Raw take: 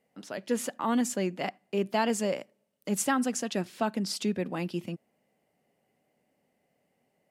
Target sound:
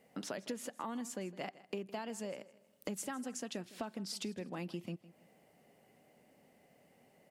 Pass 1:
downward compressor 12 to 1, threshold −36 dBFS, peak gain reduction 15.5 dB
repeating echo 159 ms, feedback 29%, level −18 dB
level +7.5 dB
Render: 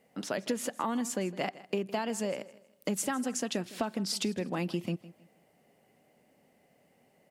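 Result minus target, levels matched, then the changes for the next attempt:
downward compressor: peak gain reduction −9 dB
change: downward compressor 12 to 1, threshold −46 dBFS, peak gain reduction 24.5 dB

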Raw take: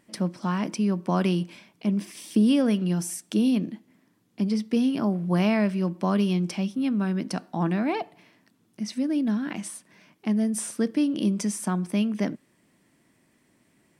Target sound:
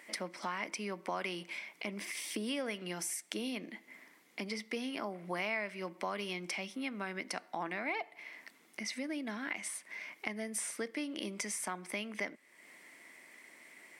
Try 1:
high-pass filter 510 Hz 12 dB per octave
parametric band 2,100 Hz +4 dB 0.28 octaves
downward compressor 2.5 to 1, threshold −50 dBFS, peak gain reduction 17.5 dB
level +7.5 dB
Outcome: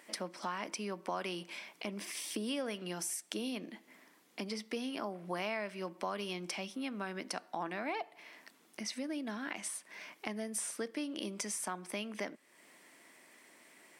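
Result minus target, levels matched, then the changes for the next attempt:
2,000 Hz band −3.5 dB
change: parametric band 2,100 Hz +14 dB 0.28 octaves

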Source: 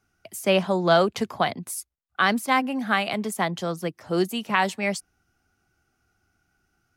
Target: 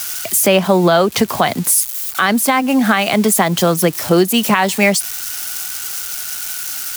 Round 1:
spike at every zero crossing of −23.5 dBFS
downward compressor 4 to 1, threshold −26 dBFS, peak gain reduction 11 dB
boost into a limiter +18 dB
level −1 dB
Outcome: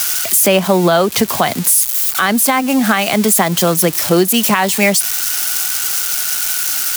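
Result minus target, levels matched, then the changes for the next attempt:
spike at every zero crossing: distortion +7 dB
change: spike at every zero crossing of −31 dBFS

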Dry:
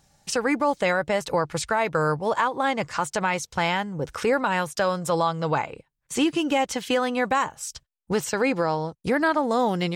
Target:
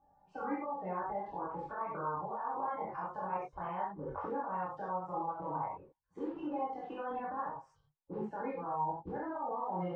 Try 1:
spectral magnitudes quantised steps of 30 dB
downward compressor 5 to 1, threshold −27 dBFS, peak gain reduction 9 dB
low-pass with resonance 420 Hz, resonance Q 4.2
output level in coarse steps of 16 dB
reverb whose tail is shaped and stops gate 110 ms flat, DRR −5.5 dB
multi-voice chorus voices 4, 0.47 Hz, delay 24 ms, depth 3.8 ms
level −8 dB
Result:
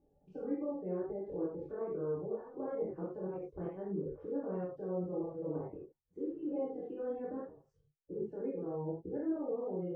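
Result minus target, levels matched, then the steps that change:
1,000 Hz band −15.5 dB
change: low-pass with resonance 930 Hz, resonance Q 4.2

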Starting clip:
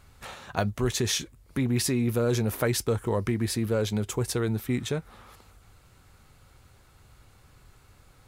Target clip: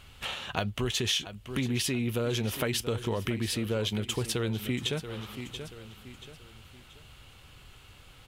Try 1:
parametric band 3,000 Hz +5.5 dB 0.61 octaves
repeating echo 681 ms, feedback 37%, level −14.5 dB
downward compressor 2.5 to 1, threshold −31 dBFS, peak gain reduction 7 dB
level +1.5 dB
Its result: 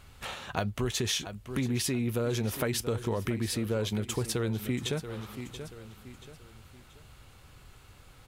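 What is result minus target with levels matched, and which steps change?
4,000 Hz band −3.5 dB
change: parametric band 3,000 Hz +14.5 dB 0.61 octaves

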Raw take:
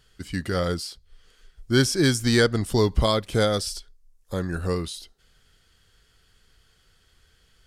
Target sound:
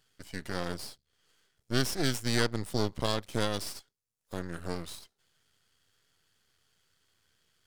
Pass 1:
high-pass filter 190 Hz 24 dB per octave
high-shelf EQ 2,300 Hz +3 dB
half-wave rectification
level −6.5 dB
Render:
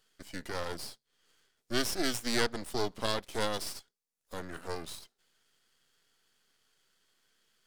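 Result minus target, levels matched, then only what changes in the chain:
125 Hz band −8.0 dB
change: high-pass filter 89 Hz 24 dB per octave

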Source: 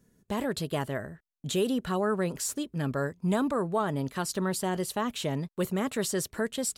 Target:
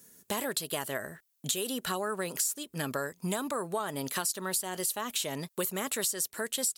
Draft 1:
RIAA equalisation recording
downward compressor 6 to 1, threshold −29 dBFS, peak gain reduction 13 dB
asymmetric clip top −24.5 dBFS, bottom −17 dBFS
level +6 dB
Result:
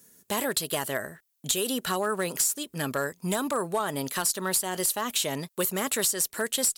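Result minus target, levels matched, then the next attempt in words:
downward compressor: peak gain reduction −5.5 dB
RIAA equalisation recording
downward compressor 6 to 1, threshold −35.5 dBFS, peak gain reduction 18.5 dB
asymmetric clip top −24.5 dBFS, bottom −17 dBFS
level +6 dB

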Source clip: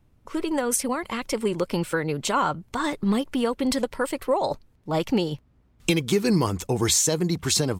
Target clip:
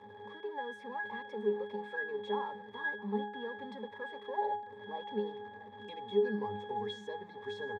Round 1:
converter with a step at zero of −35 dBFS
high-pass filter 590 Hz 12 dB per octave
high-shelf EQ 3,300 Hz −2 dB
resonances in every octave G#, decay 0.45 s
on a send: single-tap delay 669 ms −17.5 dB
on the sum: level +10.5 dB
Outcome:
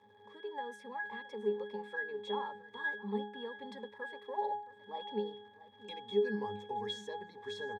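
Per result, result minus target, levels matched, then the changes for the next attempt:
converter with a step at zero: distortion −10 dB; 4,000 Hz band +4.0 dB
change: converter with a step at zero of −23 dBFS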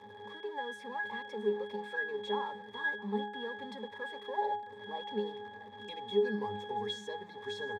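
4,000 Hz band +5.0 dB
change: high-shelf EQ 3,300 Hz −13.5 dB

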